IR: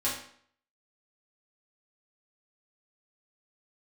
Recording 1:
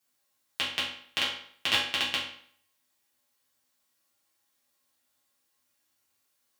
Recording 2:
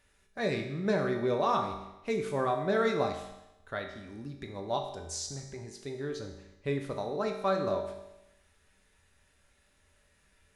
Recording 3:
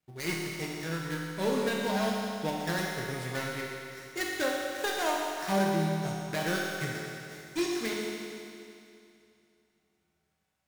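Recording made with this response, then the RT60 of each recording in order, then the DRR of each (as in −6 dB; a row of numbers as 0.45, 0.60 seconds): 1; 0.60, 0.95, 2.6 seconds; −8.5, 2.5, −3.5 decibels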